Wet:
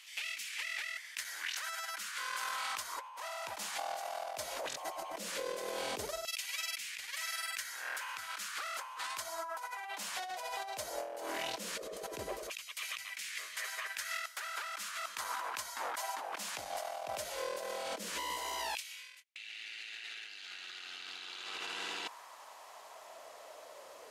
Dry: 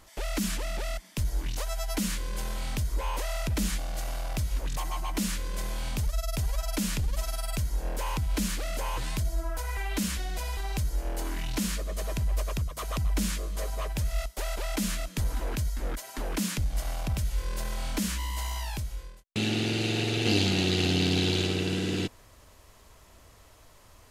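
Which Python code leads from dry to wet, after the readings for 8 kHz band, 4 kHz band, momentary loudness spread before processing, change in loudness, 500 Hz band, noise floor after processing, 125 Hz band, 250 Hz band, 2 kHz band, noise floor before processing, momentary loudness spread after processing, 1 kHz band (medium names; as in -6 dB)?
-5.5 dB, -7.0 dB, 9 LU, -8.5 dB, -7.0 dB, -53 dBFS, -34.0 dB, -24.5 dB, -2.0 dB, -55 dBFS, 8 LU, -1.0 dB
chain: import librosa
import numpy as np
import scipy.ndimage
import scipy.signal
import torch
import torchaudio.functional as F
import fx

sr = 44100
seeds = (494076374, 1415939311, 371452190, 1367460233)

y = fx.high_shelf(x, sr, hz=11000.0, db=-7.5)
y = fx.filter_lfo_highpass(y, sr, shape='saw_down', hz=0.16, low_hz=380.0, high_hz=2600.0, q=3.0)
y = fx.over_compress(y, sr, threshold_db=-40.0, ratio=-1.0)
y = F.gain(torch.from_numpy(y), -1.5).numpy()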